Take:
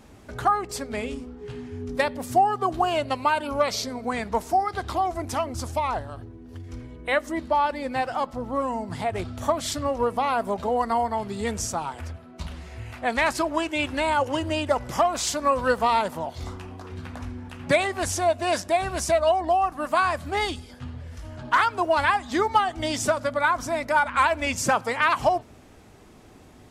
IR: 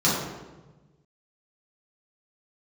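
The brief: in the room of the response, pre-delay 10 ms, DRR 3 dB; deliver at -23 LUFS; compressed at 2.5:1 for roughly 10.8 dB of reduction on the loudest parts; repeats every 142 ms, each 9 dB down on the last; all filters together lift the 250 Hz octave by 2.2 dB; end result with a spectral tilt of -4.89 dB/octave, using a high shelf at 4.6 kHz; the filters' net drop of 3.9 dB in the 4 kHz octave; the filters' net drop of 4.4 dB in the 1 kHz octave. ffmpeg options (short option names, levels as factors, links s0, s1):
-filter_complex "[0:a]equalizer=f=250:t=o:g=3,equalizer=f=1000:t=o:g=-6,equalizer=f=4000:t=o:g=-8,highshelf=f=4600:g=5.5,acompressor=threshold=0.0178:ratio=2.5,aecho=1:1:142|284|426|568:0.355|0.124|0.0435|0.0152,asplit=2[s0][s1];[1:a]atrim=start_sample=2205,adelay=10[s2];[s1][s2]afir=irnorm=-1:irlink=0,volume=0.112[s3];[s0][s3]amix=inputs=2:normalize=0,volume=2.99"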